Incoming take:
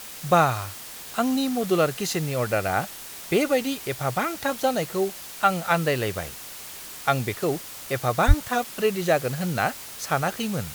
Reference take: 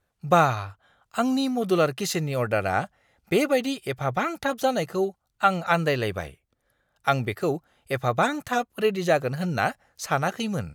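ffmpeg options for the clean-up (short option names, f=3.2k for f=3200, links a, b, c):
-filter_complex "[0:a]asplit=3[a][b][c];[a]afade=t=out:st=8.27:d=0.02[d];[b]highpass=f=140:w=0.5412,highpass=f=140:w=1.3066,afade=t=in:st=8.27:d=0.02,afade=t=out:st=8.39:d=0.02[e];[c]afade=t=in:st=8.39:d=0.02[f];[d][e][f]amix=inputs=3:normalize=0,afftdn=nr=30:nf=-39"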